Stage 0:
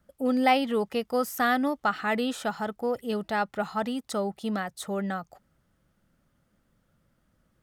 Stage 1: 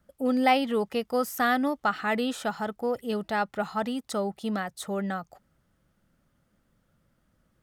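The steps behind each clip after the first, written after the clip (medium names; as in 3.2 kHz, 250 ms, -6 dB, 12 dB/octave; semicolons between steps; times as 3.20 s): no audible change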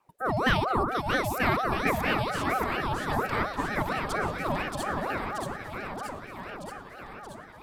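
echo whose repeats swap between lows and highs 314 ms, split 830 Hz, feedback 83%, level -2.5 dB; ring modulator with a swept carrier 700 Hz, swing 50%, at 4.3 Hz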